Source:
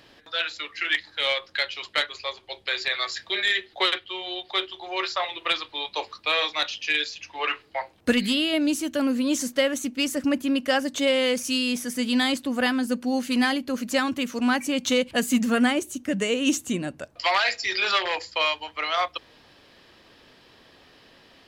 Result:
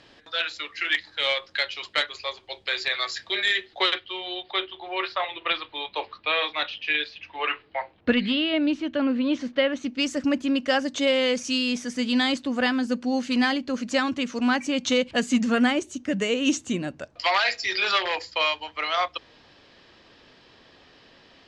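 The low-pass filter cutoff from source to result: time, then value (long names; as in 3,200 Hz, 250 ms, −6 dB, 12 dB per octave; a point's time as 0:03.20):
low-pass filter 24 dB per octave
0:03.59 8,200 Hz
0:04.66 3,600 Hz
0:09.67 3,600 Hz
0:10.07 6,900 Hz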